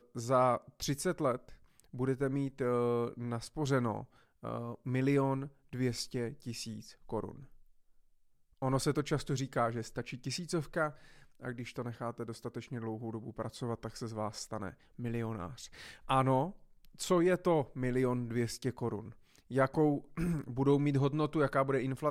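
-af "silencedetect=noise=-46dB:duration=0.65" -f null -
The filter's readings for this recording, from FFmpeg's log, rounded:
silence_start: 7.44
silence_end: 8.62 | silence_duration: 1.18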